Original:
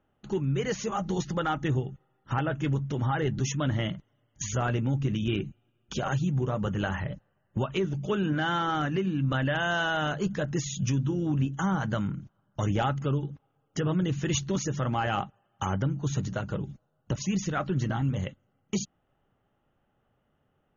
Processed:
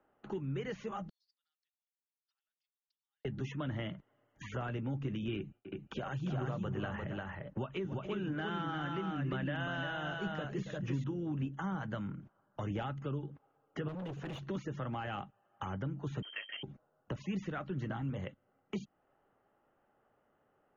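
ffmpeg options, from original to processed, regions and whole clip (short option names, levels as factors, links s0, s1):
-filter_complex "[0:a]asettb=1/sr,asplit=3[s0][s1][s2];[s0]atrim=end=1.094[s3];[s1]atrim=start=1.09:end=3.25,asetpts=PTS-STARTPTS,afade=t=in:d=0.004:c=qsin,afade=t=out:st=2.156:d=0.004:c=qsin,acompressor=threshold=0.01:ratio=6:attack=3.2:release=140:knee=1:detection=peak,asuperpass=centerf=4700:order=4:qfactor=6.4[s4];[s2]atrim=start=3.246[s5];[s3][s4]acrossfade=d=0.004:c1=hsin:c2=qsin[s6];[s6][s5]acrossfade=d=0.004:c1=qsin:c2=hsin,asettb=1/sr,asplit=3[s7][s8][s9];[s7]atrim=end=5.374[s10];[s8]atrim=start=5.37:end=11.04,asetpts=PTS-STARTPTS,afade=t=in:d=0.004:c=qsin,afade=t=out:st=5.666:d=0.004:c=qsin,agate=range=0.0224:threshold=0.00126:ratio=3:release=100:detection=peak,aecho=1:1:277|349:0.188|0.631,atrim=end_sample=250047[s11];[s9]atrim=start=11.036[s12];[s10][s11]acrossfade=d=0.004:c1=hsin:c2=qsin[s13];[s13][s12]acrossfade=d=0.004:c1=qsin:c2=hsin,asettb=1/sr,asplit=3[s14][s15][s16];[s14]atrim=end=13.884[s17];[s15]atrim=start=13.88:end=14.42,asetpts=PTS-STARTPTS,afade=t=in:d=0.004:c=qsin,afade=t=out:st=0.536:d=0.004:c=qsin,bandreject=f=350:w=6.6,asoftclip=type=hard:threshold=0.0299,equalizer=f=2100:t=o:w=0.45:g=-7.5[s18];[s16]atrim=start=14.416[s19];[s17][s18]acrossfade=d=0.004:c1=hsin:c2=qsin[s20];[s20][s19]acrossfade=d=0.004:c1=qsin:c2=hsin,asettb=1/sr,asplit=3[s21][s22][s23];[s21]atrim=end=16.224[s24];[s22]atrim=start=16.22:end=16.63,asetpts=PTS-STARTPTS,afade=t=in:d=0.004:c=qsin,afade=t=out:st=0.406:d=0.004:c=qsin,lowshelf=f=370:g=-8.5,lowpass=f=2800:t=q:w=0.5098,lowpass=f=2800:t=q:w=0.6013,lowpass=f=2800:t=q:w=0.9,lowpass=f=2800:t=q:w=2.563,afreqshift=-3300[s25];[s23]atrim=start=16.626[s26];[s24][s25]acrossfade=d=0.004:c1=hsin:c2=qsin[s27];[s27][s26]acrossfade=d=0.004:c1=qsin:c2=hsin,acrossover=split=4000[s28][s29];[s29]acompressor=threshold=0.00447:ratio=4:attack=1:release=60[s30];[s28][s30]amix=inputs=2:normalize=0,acrossover=split=280 2400:gain=0.2 1 0.0794[s31][s32][s33];[s31][s32][s33]amix=inputs=3:normalize=0,acrossover=split=210|3000[s34][s35][s36];[s35]acompressor=threshold=0.00447:ratio=3[s37];[s34][s37][s36]amix=inputs=3:normalize=0,volume=1.33"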